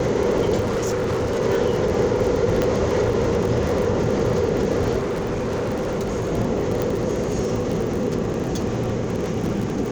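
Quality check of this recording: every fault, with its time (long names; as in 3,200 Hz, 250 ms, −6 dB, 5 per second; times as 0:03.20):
surface crackle 39 per second −24 dBFS
0:00.60–0:01.40: clipping −19.5 dBFS
0:02.62: click −8 dBFS
0:04.98–0:06.33: clipping −21 dBFS
0:06.82: click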